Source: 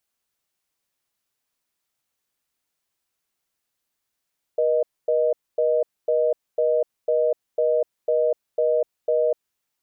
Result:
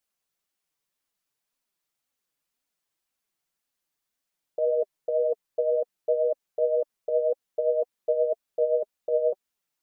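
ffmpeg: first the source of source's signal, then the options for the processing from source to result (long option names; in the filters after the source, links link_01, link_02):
-f lavfi -i "aevalsrc='0.1*(sin(2*PI*480*t)+sin(2*PI*620*t))*clip(min(mod(t,0.5),0.25-mod(t,0.5))/0.005,0,1)':duration=4.78:sample_rate=44100"
-af "flanger=delay=3.3:depth=3.9:regen=31:speed=1.9:shape=triangular"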